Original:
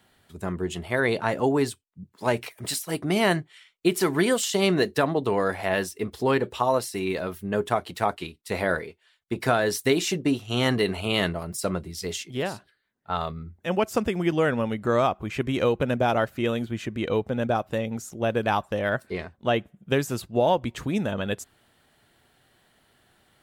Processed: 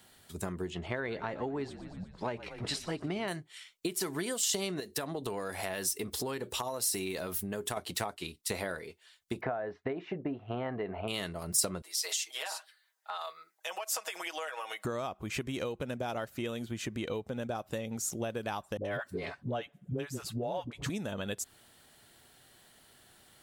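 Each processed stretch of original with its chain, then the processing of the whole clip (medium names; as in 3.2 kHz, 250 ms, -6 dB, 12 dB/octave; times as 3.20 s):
0.70–3.28 s: low-pass 2.8 kHz + frequency-shifting echo 118 ms, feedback 61%, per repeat -50 Hz, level -18 dB
4.80–7.77 s: treble shelf 7.5 kHz +6.5 dB + compression 2:1, threshold -35 dBFS
9.41–11.08 s: low-pass 2 kHz 24 dB/octave + peaking EQ 690 Hz +9.5 dB 0.72 oct
11.82–14.85 s: high-pass 660 Hz 24 dB/octave + comb 6.3 ms, depth 99% + compression, threshold -35 dBFS
18.77–20.90 s: treble shelf 4.3 kHz -9.5 dB + comb 7.1 ms, depth 41% + phase dispersion highs, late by 76 ms, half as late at 450 Hz
whole clip: treble shelf 6.2 kHz -4.5 dB; compression 12:1, threshold -32 dBFS; tone controls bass -1 dB, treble +12 dB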